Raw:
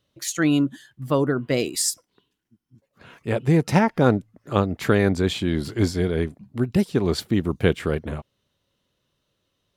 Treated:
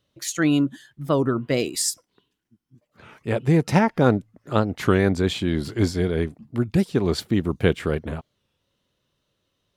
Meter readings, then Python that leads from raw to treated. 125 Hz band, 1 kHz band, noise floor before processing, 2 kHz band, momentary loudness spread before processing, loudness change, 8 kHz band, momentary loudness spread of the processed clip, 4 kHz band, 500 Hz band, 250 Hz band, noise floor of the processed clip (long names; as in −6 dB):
0.0 dB, 0.0 dB, −76 dBFS, −0.5 dB, 9 LU, 0.0 dB, −1.0 dB, 9 LU, 0.0 dB, 0.0 dB, 0.0 dB, −76 dBFS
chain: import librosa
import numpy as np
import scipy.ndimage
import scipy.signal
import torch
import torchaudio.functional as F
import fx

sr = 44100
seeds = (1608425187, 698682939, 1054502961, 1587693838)

y = fx.high_shelf(x, sr, hz=11000.0, db=-3.0)
y = fx.record_warp(y, sr, rpm=33.33, depth_cents=160.0)